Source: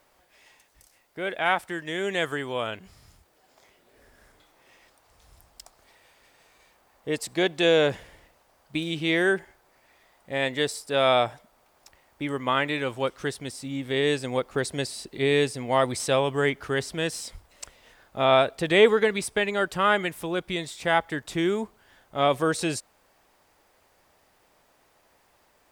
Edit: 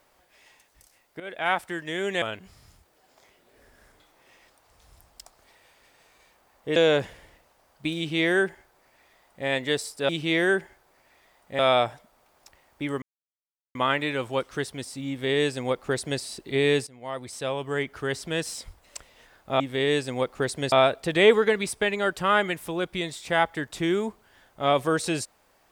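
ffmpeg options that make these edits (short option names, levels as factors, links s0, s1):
-filter_complex "[0:a]asplit=10[s0][s1][s2][s3][s4][s5][s6][s7][s8][s9];[s0]atrim=end=1.2,asetpts=PTS-STARTPTS,afade=t=out:st=1.196:d=0.004:c=hsin:silence=0.223872[s10];[s1]atrim=start=1.2:end=2.222,asetpts=PTS-STARTPTS,afade=t=in:d=0.49:c=qsin:silence=0.223872[s11];[s2]atrim=start=2.618:end=7.162[s12];[s3]atrim=start=7.658:end=10.992[s13];[s4]atrim=start=8.868:end=10.372[s14];[s5]atrim=start=10.988:end=12.42,asetpts=PTS-STARTPTS,afade=t=out:st=1.428:d=0.004:c=hsin,apad=pad_dur=0.73[s15];[s6]atrim=start=12.42:end=15.54,asetpts=PTS-STARTPTS,afade=t=in:d=0.004:c=hsin,afade=t=out:st=3.116:d=0.004:c=hsin:silence=0.112202[s16];[s7]atrim=start=15.54:end=18.272,asetpts=PTS-STARTPTS,afade=t=in:d=1.58:silence=0.112202[s17];[s8]atrim=start=13.758:end=14.882[s18];[s9]atrim=start=18.268[s19];[s10][s11]concat=n=2:v=0:a=1[s20];[s20][s12]acrossfade=d=0.004:c1=hsin:c2=hsin[s21];[s21][s13]acrossfade=d=0.004:c1=hsin:c2=hsin[s22];[s22][s14]acrossfade=d=0.004:c1=hsin:c2=hsin[s23];[s15][s16][s17]concat=n=3:v=0:a=1[s24];[s23][s24]acrossfade=d=0.004:c1=hsin:c2=hsin[s25];[s25][s18]acrossfade=d=0.004:c1=hsin:c2=hsin[s26];[s26][s19]acrossfade=d=0.004:c1=hsin:c2=hsin"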